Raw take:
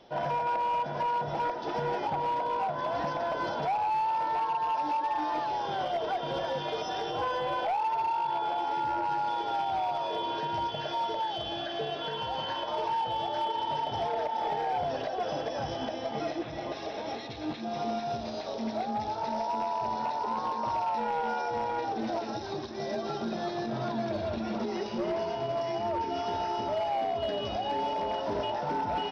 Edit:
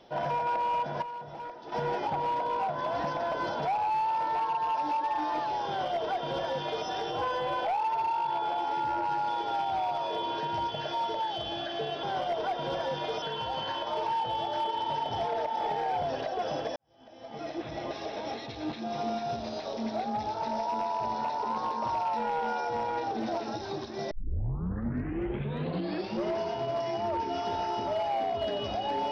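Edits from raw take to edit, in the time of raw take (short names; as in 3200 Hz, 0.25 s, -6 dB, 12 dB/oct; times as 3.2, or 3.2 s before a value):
1.02–1.72 gain -10 dB
5.67–6.86 copy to 12.03
15.57–16.49 fade in quadratic
22.92 tape start 2.11 s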